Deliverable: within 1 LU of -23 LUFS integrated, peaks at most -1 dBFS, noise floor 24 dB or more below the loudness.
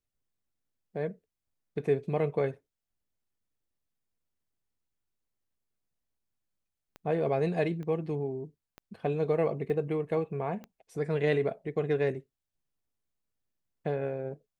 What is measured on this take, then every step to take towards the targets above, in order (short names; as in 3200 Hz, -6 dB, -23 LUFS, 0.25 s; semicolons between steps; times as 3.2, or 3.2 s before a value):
clicks 5; loudness -31.5 LUFS; peak -14.5 dBFS; loudness target -23.0 LUFS
-> de-click; gain +8.5 dB